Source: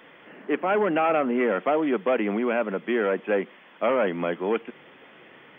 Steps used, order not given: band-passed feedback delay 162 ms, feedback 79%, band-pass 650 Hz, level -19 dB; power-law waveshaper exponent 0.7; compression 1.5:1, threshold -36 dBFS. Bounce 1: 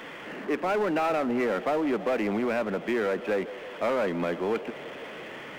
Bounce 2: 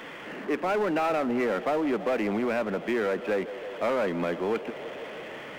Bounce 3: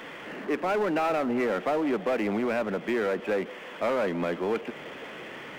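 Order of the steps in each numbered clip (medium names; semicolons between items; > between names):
compression > band-passed feedback delay > power-law waveshaper; band-passed feedback delay > compression > power-law waveshaper; compression > power-law waveshaper > band-passed feedback delay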